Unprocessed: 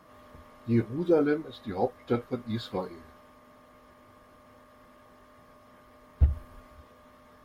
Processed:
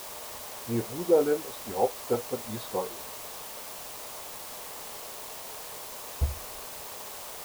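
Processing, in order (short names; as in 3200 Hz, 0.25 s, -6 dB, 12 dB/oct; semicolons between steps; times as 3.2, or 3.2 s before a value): requantised 6-bit, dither triangular; band shelf 670 Hz +9 dB; gain -6 dB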